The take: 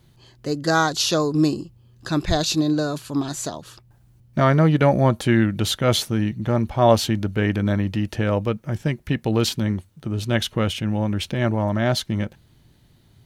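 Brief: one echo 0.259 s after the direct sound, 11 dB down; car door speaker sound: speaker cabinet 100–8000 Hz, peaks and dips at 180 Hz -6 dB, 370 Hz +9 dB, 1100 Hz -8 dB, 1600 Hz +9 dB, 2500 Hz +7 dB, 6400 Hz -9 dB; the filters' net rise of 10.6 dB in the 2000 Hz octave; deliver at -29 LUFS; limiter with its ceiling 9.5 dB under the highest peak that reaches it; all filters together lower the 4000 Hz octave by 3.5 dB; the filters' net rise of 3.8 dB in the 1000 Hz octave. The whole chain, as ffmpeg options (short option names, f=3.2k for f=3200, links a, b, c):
-af "equalizer=f=1k:t=o:g=6,equalizer=f=2k:t=o:g=4.5,equalizer=f=4k:t=o:g=-7,alimiter=limit=-9dB:level=0:latency=1,highpass=100,equalizer=f=180:t=q:w=4:g=-6,equalizer=f=370:t=q:w=4:g=9,equalizer=f=1.1k:t=q:w=4:g=-8,equalizer=f=1.6k:t=q:w=4:g=9,equalizer=f=2.5k:t=q:w=4:g=7,equalizer=f=6.4k:t=q:w=4:g=-9,lowpass=f=8k:w=0.5412,lowpass=f=8k:w=1.3066,aecho=1:1:259:0.282,volume=-8.5dB"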